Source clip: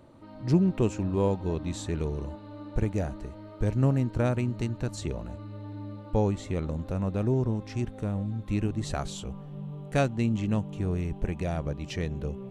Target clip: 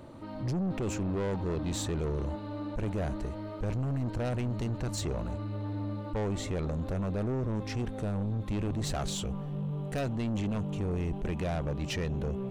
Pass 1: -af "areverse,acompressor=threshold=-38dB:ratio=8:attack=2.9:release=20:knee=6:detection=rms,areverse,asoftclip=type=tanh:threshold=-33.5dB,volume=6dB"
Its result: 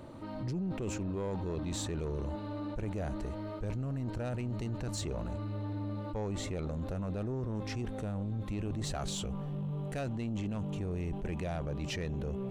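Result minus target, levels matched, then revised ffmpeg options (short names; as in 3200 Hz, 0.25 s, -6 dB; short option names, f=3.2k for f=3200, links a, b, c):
compressor: peak gain reduction +8 dB
-af "areverse,acompressor=threshold=-29dB:ratio=8:attack=2.9:release=20:knee=6:detection=rms,areverse,asoftclip=type=tanh:threshold=-33.5dB,volume=6dB"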